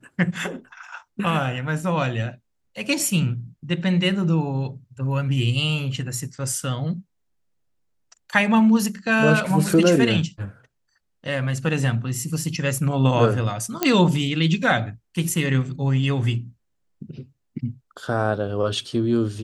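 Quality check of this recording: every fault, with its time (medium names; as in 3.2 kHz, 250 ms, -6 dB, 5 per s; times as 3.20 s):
13.83 s: pop -4 dBFS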